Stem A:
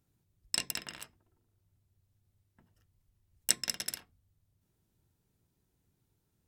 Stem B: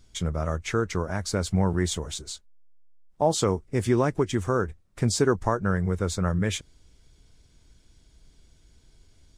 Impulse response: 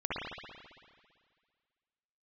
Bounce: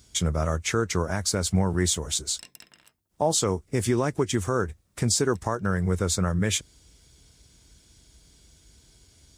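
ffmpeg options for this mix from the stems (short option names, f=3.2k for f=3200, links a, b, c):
-filter_complex "[0:a]adelay=1850,volume=-11dB[a];[1:a]highpass=f=44:w=0.5412,highpass=f=44:w=1.3066,highshelf=f=4.6k:g=10,volume=2.5dB,asplit=2[b][c];[c]apad=whole_len=367079[d];[a][d]sidechaincompress=threshold=-35dB:ratio=4:attack=35:release=155[e];[e][b]amix=inputs=2:normalize=0,alimiter=limit=-12.5dB:level=0:latency=1:release=283"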